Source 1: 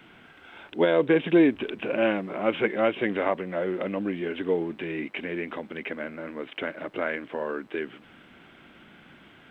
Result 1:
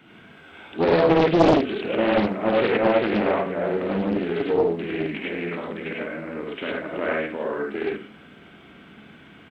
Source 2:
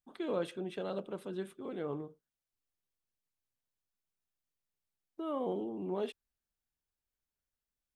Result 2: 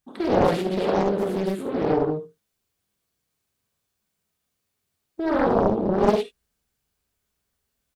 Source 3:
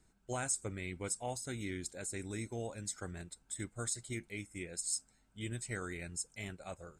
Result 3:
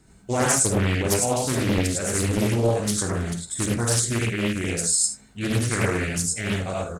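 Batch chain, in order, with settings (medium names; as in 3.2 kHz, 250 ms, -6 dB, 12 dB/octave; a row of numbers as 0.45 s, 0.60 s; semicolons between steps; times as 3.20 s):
high-pass 78 Hz 6 dB/octave; bass shelf 370 Hz +5.5 dB; on a send: early reflections 52 ms -11 dB, 76 ms -14.5 dB; on the sum: gated-style reverb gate 130 ms rising, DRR -3 dB; loudspeaker Doppler distortion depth 0.93 ms; normalise loudness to -23 LUFS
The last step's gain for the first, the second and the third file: -2.5 dB, +9.0 dB, +11.5 dB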